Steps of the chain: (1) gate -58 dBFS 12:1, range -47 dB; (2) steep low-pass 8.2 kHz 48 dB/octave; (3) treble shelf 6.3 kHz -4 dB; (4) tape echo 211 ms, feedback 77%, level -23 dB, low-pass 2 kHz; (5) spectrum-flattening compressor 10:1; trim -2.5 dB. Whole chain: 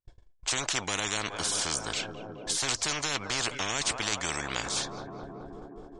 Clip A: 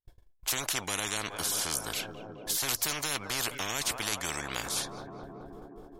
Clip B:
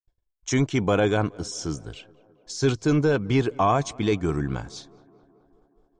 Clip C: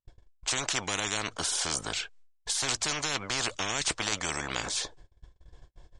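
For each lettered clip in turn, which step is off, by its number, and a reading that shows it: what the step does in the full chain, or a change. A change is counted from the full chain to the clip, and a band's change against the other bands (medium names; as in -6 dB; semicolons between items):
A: 2, crest factor change +1.5 dB; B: 5, 8 kHz band -18.0 dB; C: 4, momentary loudness spread change -7 LU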